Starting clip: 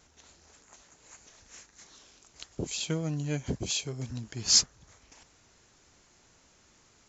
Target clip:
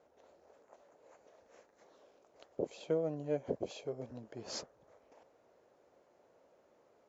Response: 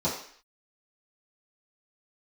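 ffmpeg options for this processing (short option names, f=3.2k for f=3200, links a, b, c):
-af "bandpass=f=550:t=q:w=3.2:csg=0,volume=7.5dB"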